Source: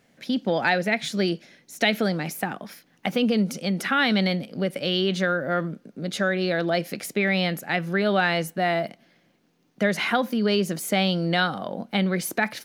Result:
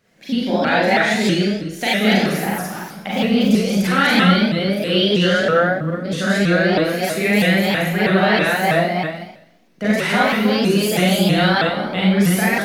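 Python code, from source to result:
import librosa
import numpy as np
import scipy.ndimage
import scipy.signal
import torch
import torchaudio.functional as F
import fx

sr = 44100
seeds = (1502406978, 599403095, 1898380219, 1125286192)

y = fx.reverse_delay(x, sr, ms=164, wet_db=-0.5)
y = fx.rev_schroeder(y, sr, rt60_s=0.75, comb_ms=32, drr_db=-6.0)
y = fx.vibrato_shape(y, sr, shape='saw_up', rate_hz=3.1, depth_cents=160.0)
y = y * 10.0 ** (-2.5 / 20.0)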